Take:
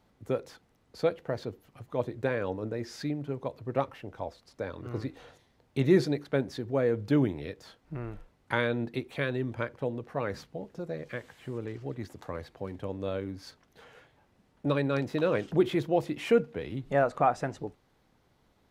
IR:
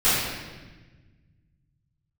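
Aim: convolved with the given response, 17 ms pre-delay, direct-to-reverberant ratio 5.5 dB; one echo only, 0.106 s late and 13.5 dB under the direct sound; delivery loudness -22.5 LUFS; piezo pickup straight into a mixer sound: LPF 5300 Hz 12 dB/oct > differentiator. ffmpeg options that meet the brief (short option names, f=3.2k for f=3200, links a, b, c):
-filter_complex "[0:a]aecho=1:1:106:0.211,asplit=2[a][b];[1:a]atrim=start_sample=2205,adelay=17[c];[b][c]afir=irnorm=-1:irlink=0,volume=-24dB[d];[a][d]amix=inputs=2:normalize=0,lowpass=5.3k,aderivative,volume=27.5dB"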